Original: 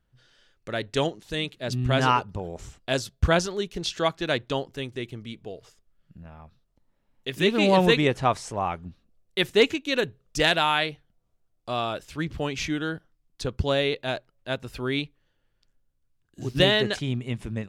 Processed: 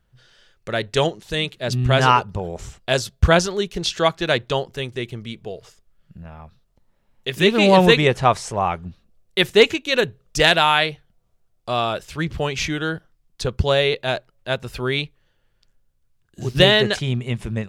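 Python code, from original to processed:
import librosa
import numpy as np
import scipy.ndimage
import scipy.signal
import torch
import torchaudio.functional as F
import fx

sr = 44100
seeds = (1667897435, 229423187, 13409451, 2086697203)

y = fx.peak_eq(x, sr, hz=280.0, db=-11.0, octaves=0.22)
y = F.gain(torch.from_numpy(y), 6.5).numpy()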